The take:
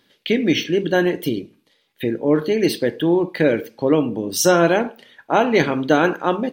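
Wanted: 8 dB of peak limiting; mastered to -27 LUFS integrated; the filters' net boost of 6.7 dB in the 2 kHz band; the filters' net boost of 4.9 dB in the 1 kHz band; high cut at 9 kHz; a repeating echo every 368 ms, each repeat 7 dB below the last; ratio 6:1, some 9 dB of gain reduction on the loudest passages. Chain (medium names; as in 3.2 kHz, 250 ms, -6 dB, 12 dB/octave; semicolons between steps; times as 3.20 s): low-pass 9 kHz; peaking EQ 1 kHz +5 dB; peaking EQ 2 kHz +7 dB; compression 6:1, threshold -17 dBFS; peak limiter -13.5 dBFS; feedback delay 368 ms, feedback 45%, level -7 dB; trim -2.5 dB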